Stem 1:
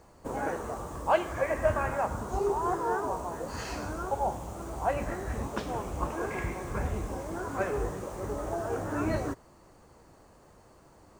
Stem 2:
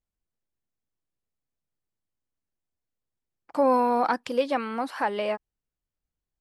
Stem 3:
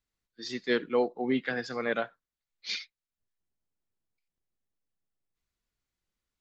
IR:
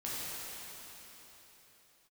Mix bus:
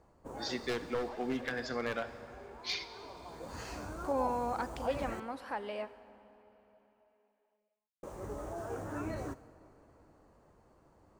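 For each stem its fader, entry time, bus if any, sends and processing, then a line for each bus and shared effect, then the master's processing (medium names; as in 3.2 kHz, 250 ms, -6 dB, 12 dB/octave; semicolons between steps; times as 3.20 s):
-7.5 dB, 0.00 s, muted 5.20–8.03 s, send -19.5 dB, peak limiter -22.5 dBFS, peak gain reduction 9.5 dB; auto duck -18 dB, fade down 1.90 s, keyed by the third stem
-12.5 dB, 0.50 s, send -17 dB, none
-1.0 dB, 0.00 s, send -14.5 dB, one-sided wavefolder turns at -22.5 dBFS; compression 5:1, threshold -32 dBFS, peak gain reduction 8.5 dB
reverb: on, RT60 3.9 s, pre-delay 6 ms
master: tape noise reduction on one side only decoder only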